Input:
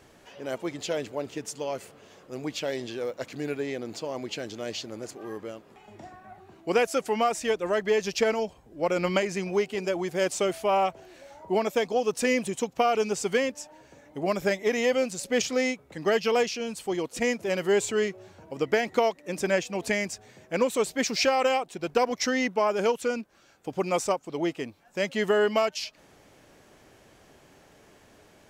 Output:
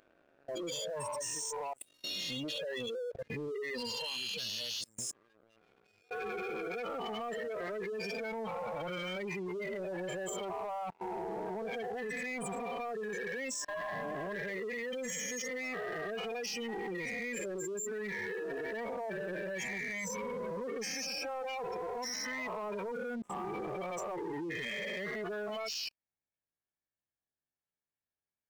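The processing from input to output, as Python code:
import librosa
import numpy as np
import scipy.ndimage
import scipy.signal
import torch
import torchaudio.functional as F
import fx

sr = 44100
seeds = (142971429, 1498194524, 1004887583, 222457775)

p1 = fx.spec_swells(x, sr, rise_s=2.8)
p2 = fx.noise_reduce_blind(p1, sr, reduce_db=13)
p3 = fx.spec_gate(p2, sr, threshold_db=-15, keep='strong')
p4 = fx.tone_stack(p3, sr, knobs='5-5-5')
p5 = fx.rider(p4, sr, range_db=3, speed_s=0.5)
p6 = p4 + (p5 * librosa.db_to_amplitude(1.0))
p7 = fx.dynamic_eq(p6, sr, hz=1200.0, q=1.1, threshold_db=-45.0, ratio=4.0, max_db=-5)
p8 = fx.level_steps(p7, sr, step_db=24)
y = fx.leveller(p8, sr, passes=3)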